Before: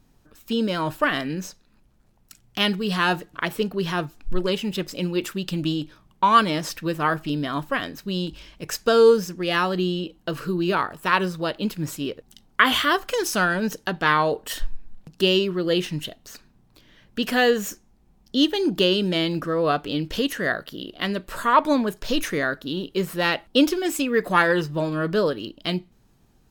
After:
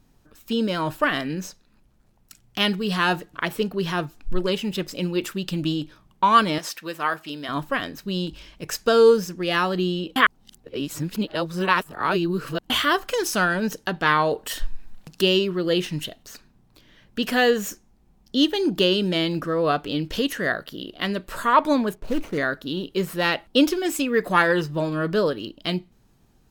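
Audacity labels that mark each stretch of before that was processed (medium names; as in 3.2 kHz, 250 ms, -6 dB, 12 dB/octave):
6.580000	7.490000	high-pass 760 Hz 6 dB/octave
10.160000	12.700000	reverse
14.310000	16.230000	tape noise reduction on one side only encoder only
21.950000	22.380000	median filter over 25 samples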